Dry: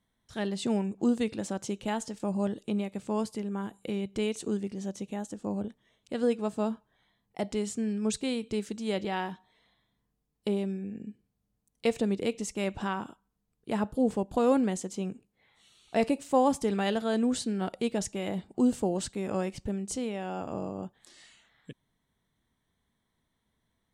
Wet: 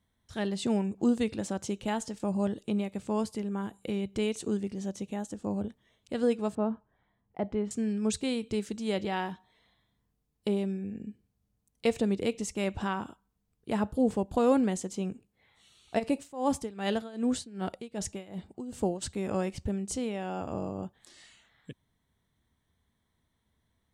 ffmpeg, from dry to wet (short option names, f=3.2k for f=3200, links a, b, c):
-filter_complex "[0:a]asettb=1/sr,asplit=3[a][b][c];[a]atrim=end=6.554[d];[b]atrim=start=6.55:end=7.71,asetpts=PTS-STARTPTS,afade=t=in:d=0.004:c=qsin,afade=t=out:st=1.156:d=0.004:c=qsin,lowpass=1.6k[e];[c]atrim=start=7.706[f];[d][e]acrossfade=d=0.004:c1=hsin:c2=qsin[g];[g][f]acrossfade=d=0.004:c1=qsin:c2=hsin,asplit=3[h][i][j];[h]afade=t=out:st=15.98:d=0.02[k];[i]tremolo=f=2.6:d=0.89,afade=t=in:st=15.98:d=0.02,afade=t=out:st=19.01:d=0.02[l];[j]afade=t=in:st=19.01:d=0.02[m];[k][l][m]amix=inputs=3:normalize=0,equalizer=f=79:t=o:w=0.75:g=8.5"